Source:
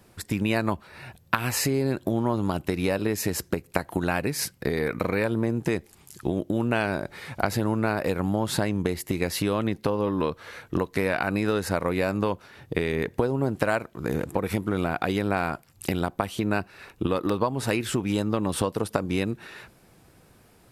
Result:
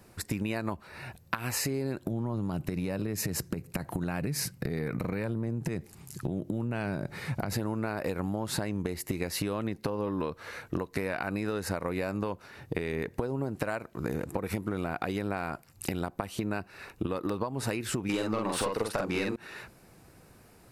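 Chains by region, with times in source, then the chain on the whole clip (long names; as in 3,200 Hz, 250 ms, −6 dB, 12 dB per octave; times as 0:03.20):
0:02.07–0:07.53: parametric band 140 Hz +10.5 dB 1.4 octaves + downward compressor, threshold −24 dBFS
0:18.09–0:19.36: mid-hump overdrive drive 20 dB, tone 3,900 Hz, clips at −7 dBFS + double-tracking delay 46 ms −2.5 dB
whole clip: parametric band 3,300 Hz −6 dB 0.25 octaves; downward compressor, threshold −28 dBFS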